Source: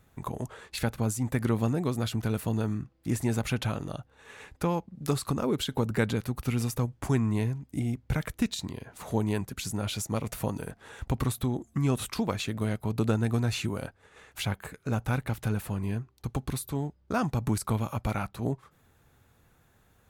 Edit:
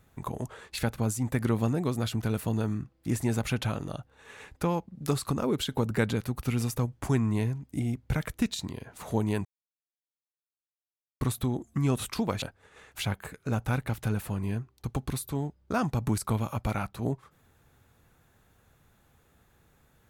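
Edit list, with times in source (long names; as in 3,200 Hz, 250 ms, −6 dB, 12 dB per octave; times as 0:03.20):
0:09.45–0:11.21: silence
0:12.42–0:13.82: remove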